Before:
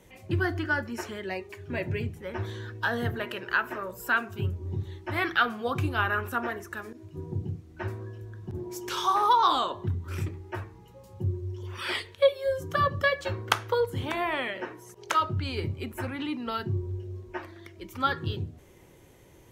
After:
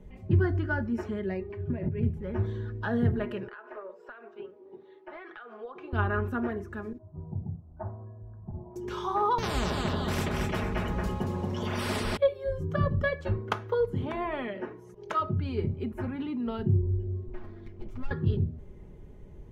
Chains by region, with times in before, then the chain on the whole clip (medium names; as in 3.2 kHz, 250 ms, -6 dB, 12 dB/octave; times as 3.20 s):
1.42–2.03 s: compressor with a negative ratio -35 dBFS + distance through air 250 m
3.48–5.93 s: high-pass 430 Hz 24 dB/octave + distance through air 180 m + compression 12:1, threshold -35 dBFS
6.98–8.76 s: low-pass 1.1 kHz 24 dB/octave + resonant low shelf 530 Hz -8 dB, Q 3
9.38–12.17 s: high-pass 40 Hz + feedback delay 228 ms, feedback 22%, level -6.5 dB + spectrum-flattening compressor 10:1
13.38–16.59 s: bass shelf 110 Hz -9.5 dB + band-stop 7.8 kHz, Q 18
17.27–18.11 s: comb filter that takes the minimum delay 8.5 ms + compression 5:1, threshold -40 dBFS + careless resampling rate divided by 2×, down filtered, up hold
whole clip: tilt EQ -4.5 dB/octave; comb 4.8 ms, depth 45%; trim -5 dB